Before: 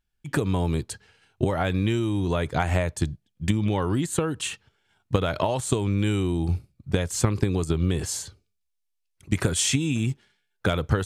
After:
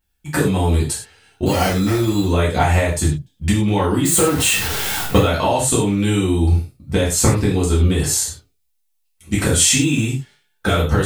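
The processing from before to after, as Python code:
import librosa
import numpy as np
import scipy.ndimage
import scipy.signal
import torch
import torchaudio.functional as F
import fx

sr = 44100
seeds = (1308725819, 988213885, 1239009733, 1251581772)

p1 = fx.zero_step(x, sr, step_db=-28.5, at=(4.05, 5.18))
p2 = fx.high_shelf(p1, sr, hz=9400.0, db=10.5)
p3 = fx.sample_hold(p2, sr, seeds[0], rate_hz=3700.0, jitter_pct=0, at=(1.45, 2.24), fade=0.02)
p4 = fx.level_steps(p3, sr, step_db=17)
p5 = p3 + (p4 * librosa.db_to_amplitude(-2.0))
p6 = fx.rev_gated(p5, sr, seeds[1], gate_ms=140, shape='falling', drr_db=-7.0)
p7 = fx.backlash(p6, sr, play_db=-34.0, at=(9.58, 10.06))
y = p7 * librosa.db_to_amplitude(-1.5)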